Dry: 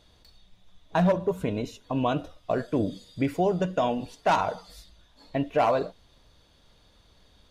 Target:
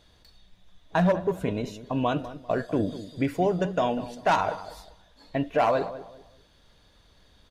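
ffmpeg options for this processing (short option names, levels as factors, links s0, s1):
-filter_complex "[0:a]equalizer=f=1700:w=3.8:g=4,asplit=2[s0][s1];[s1]adelay=197,lowpass=f=1300:p=1,volume=0.224,asplit=2[s2][s3];[s3]adelay=197,lowpass=f=1300:p=1,volume=0.31,asplit=2[s4][s5];[s5]adelay=197,lowpass=f=1300:p=1,volume=0.31[s6];[s2][s4][s6]amix=inputs=3:normalize=0[s7];[s0][s7]amix=inputs=2:normalize=0"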